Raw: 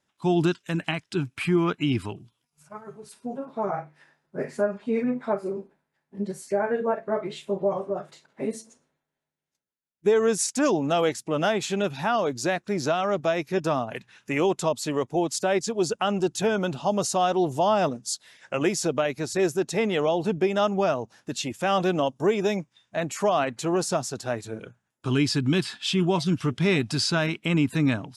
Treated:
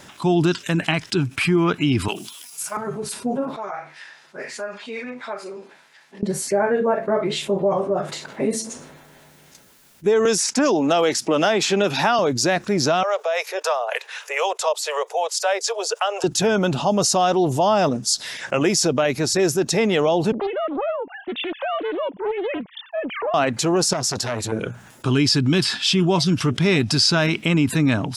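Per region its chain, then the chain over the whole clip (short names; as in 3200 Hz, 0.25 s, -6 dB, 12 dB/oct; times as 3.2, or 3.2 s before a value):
2.08–2.77 HPF 180 Hz 24 dB/oct + tilt +4.5 dB/oct
3.56–6.23 LPF 4300 Hz + differentiator
10.25–12.19 HPF 230 Hz + high shelf 8600 Hz -6.5 dB + three-band squash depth 100%
13.03–16.24 harmonic tremolo 3.9 Hz, crossover 470 Hz + steep high-pass 450 Hz 72 dB/oct
20.32–23.34 sine-wave speech + compressor 2:1, threshold -42 dBFS + Doppler distortion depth 0.8 ms
23.93–24.52 compressor, threshold -28 dBFS + core saturation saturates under 1400 Hz
whole clip: dynamic EQ 5200 Hz, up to +6 dB, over -48 dBFS, Q 2.7; fast leveller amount 50%; gain +2 dB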